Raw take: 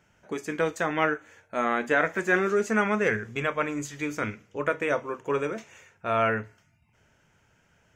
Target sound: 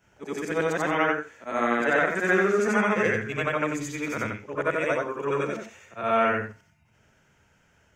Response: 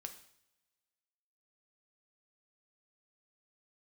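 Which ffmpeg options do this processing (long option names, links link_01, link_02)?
-af "afftfilt=real='re':imag='-im':win_size=8192:overlap=0.75,volume=6dB"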